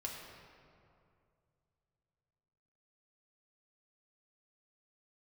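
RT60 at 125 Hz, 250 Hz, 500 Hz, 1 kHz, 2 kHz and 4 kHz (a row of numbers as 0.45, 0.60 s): 3.7, 2.6, 2.5, 2.3, 1.9, 1.4 s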